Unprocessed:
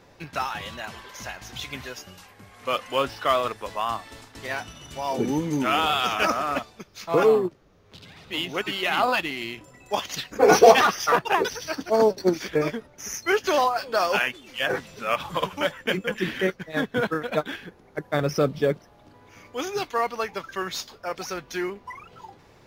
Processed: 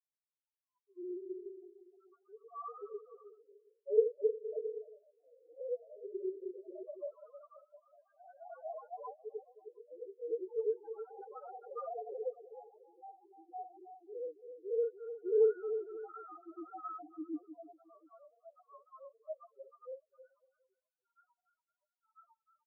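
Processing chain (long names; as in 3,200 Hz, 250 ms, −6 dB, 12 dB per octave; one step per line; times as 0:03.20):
played backwards from end to start
Chebyshev band-pass filter 310–1,400 Hz, order 5
centre clipping without the shift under −37.5 dBFS
granular cloud 100 ms, grains 20 per second, pitch spread up and down by 0 semitones
soft clipping −21 dBFS, distortion −7 dB
bouncing-ball delay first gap 310 ms, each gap 0.75×, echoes 5
spectral peaks only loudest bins 1
delay with pitch and tempo change per echo 248 ms, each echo +1 semitone, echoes 2
every bin expanded away from the loudest bin 2.5 to 1
level +4 dB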